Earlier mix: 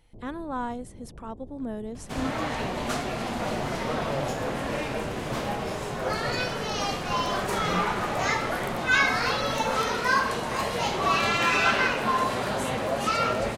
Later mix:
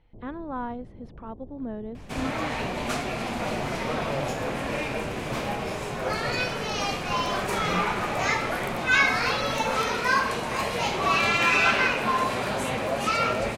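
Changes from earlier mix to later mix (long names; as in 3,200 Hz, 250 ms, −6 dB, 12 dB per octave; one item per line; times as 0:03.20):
speech: add high-frequency loss of the air 320 metres
second sound: add parametric band 2,400 Hz +6 dB 0.29 octaves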